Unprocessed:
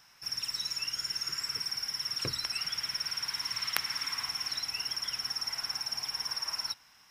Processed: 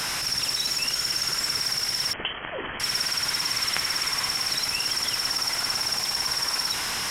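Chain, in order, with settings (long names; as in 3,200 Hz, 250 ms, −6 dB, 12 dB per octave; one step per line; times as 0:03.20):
linear delta modulator 64 kbit/s, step −29.5 dBFS
0:02.13–0:02.80: voice inversion scrambler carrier 3,200 Hz
level +7 dB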